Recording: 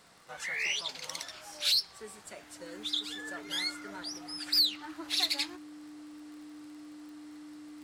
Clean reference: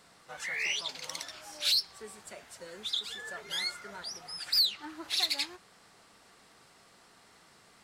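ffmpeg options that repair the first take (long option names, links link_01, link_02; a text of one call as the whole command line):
ffmpeg -i in.wav -af "adeclick=threshold=4,bandreject=frequency=300:width=30" out.wav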